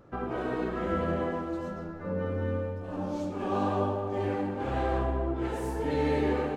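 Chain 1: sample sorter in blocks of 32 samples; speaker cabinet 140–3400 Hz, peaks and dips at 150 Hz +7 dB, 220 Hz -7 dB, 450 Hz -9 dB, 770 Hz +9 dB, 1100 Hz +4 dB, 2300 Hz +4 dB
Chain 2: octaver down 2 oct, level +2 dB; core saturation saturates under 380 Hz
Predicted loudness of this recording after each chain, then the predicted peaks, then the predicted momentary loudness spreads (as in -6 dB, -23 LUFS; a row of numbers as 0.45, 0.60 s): -30.0, -34.0 LUFS; -13.0, -14.5 dBFS; 7, 5 LU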